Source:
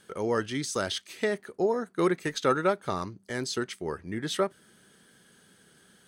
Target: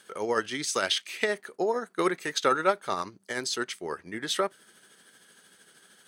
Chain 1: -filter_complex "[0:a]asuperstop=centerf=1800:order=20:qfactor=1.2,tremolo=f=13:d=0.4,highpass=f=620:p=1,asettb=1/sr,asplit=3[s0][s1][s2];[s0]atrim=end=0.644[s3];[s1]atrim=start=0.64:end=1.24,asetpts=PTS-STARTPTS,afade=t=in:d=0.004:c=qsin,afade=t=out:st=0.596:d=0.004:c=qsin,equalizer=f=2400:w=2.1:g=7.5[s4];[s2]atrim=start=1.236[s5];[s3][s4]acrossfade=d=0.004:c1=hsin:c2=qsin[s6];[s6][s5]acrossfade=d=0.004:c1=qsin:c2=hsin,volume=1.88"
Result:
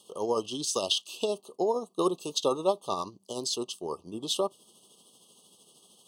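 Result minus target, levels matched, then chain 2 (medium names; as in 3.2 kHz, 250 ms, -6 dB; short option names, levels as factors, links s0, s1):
2 kHz band -18.0 dB
-filter_complex "[0:a]tremolo=f=13:d=0.4,highpass=f=620:p=1,asettb=1/sr,asplit=3[s0][s1][s2];[s0]atrim=end=0.644[s3];[s1]atrim=start=0.64:end=1.24,asetpts=PTS-STARTPTS,afade=t=in:d=0.004:c=qsin,afade=t=out:st=0.596:d=0.004:c=qsin,equalizer=f=2400:w=2.1:g=7.5[s4];[s2]atrim=start=1.236[s5];[s3][s4]acrossfade=d=0.004:c1=hsin:c2=qsin[s6];[s6][s5]acrossfade=d=0.004:c1=qsin:c2=hsin,volume=1.88"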